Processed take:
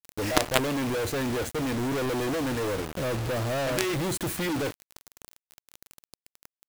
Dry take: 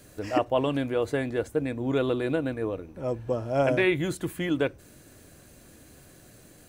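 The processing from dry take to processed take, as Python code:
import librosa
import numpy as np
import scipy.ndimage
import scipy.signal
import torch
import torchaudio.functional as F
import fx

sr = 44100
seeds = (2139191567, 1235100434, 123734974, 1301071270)

p1 = np.clip(10.0 ** (26.0 / 20.0) * x, -1.0, 1.0) / 10.0 ** (26.0 / 20.0)
p2 = x + F.gain(torch.from_numpy(p1), -6.5).numpy()
p3 = fx.quant_companded(p2, sr, bits=2)
y = F.gain(torch.from_numpy(p3), -2.5).numpy()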